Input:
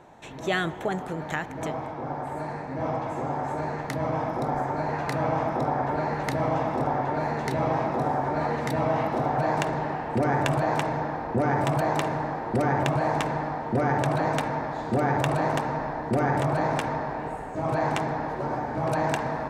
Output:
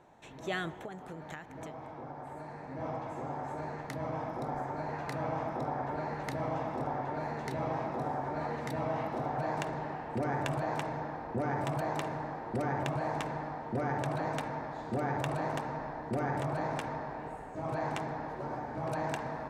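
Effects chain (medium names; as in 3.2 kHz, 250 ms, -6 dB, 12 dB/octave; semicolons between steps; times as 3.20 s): 0.71–2.63 s: compression, threshold -31 dBFS, peak gain reduction 8.5 dB; trim -9 dB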